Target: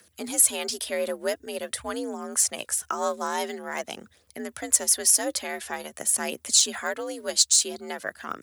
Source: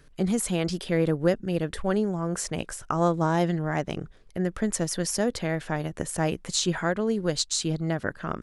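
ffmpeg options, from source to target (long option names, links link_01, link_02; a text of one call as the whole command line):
ffmpeg -i in.wav -af "aphaser=in_gain=1:out_gain=1:delay=4.3:decay=0.39:speed=0.47:type=triangular,aemphasis=mode=production:type=riaa,afreqshift=60,volume=-2.5dB" out.wav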